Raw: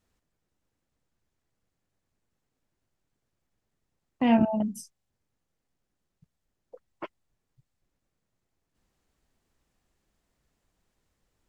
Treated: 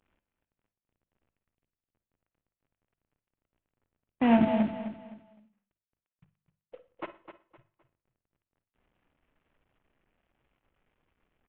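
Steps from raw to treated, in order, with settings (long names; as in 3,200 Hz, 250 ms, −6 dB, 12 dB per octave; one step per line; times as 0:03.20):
variable-slope delta modulation 16 kbit/s
mains-hum notches 50/100/150/200 Hz
repeating echo 257 ms, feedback 30%, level −11 dB
on a send at −12.5 dB: convolution reverb, pre-delay 46 ms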